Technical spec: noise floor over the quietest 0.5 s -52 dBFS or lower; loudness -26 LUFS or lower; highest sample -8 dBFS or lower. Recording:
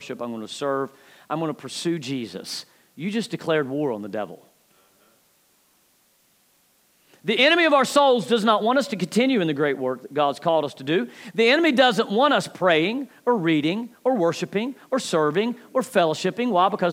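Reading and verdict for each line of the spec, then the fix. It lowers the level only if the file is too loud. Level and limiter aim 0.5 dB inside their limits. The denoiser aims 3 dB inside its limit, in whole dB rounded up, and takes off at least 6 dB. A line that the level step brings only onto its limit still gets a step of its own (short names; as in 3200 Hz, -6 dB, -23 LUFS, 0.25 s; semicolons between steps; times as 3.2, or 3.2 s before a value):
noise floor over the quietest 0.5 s -62 dBFS: OK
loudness -22.0 LUFS: fail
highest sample -3.5 dBFS: fail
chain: gain -4.5 dB; limiter -8.5 dBFS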